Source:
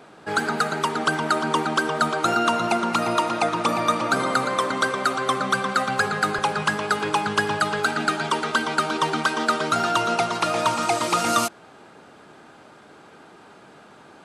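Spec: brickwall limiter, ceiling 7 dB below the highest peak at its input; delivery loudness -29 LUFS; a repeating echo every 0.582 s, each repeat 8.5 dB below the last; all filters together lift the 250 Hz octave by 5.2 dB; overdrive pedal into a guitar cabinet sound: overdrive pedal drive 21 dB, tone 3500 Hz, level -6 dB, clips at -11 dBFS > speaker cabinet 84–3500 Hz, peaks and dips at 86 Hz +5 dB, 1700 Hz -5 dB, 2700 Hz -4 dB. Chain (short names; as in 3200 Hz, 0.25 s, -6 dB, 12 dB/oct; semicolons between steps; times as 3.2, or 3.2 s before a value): bell 250 Hz +6.5 dB; limiter -14.5 dBFS; feedback echo 0.582 s, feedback 38%, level -8.5 dB; overdrive pedal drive 21 dB, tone 3500 Hz, level -6 dB, clips at -11 dBFS; speaker cabinet 84–3500 Hz, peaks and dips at 86 Hz +5 dB, 1700 Hz -5 dB, 2700 Hz -4 dB; gain -9.5 dB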